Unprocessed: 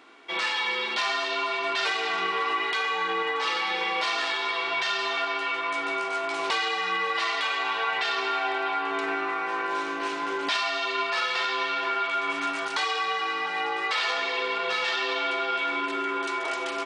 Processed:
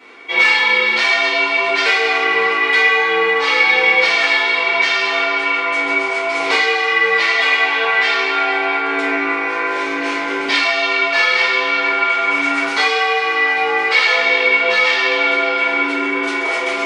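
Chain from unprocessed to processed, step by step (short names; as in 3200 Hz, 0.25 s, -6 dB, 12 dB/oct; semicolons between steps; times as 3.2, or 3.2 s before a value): HPF 64 Hz; bell 2200 Hz +12 dB 0.23 oct; shoebox room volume 42 m³, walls mixed, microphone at 2 m; gain -1 dB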